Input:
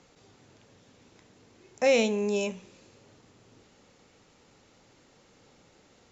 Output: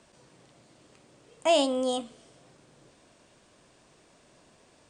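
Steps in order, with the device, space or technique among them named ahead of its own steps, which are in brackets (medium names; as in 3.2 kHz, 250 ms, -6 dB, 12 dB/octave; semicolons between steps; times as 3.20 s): nightcore (tape speed +25%)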